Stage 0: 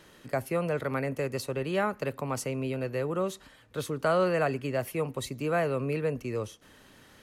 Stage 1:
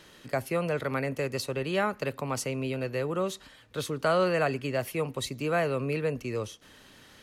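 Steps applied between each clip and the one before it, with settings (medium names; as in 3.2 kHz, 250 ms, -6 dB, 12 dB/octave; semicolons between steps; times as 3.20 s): peaking EQ 4 kHz +5 dB 1.8 oct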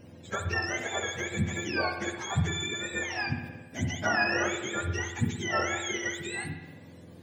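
spectrum inverted on a logarithmic axis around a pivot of 960 Hz; spring tank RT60 1.2 s, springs 58 ms, chirp 40 ms, DRR 6 dB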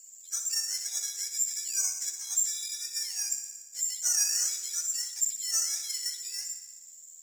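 careless resampling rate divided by 6×, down filtered, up zero stuff; band-pass filter 6 kHz, Q 2.7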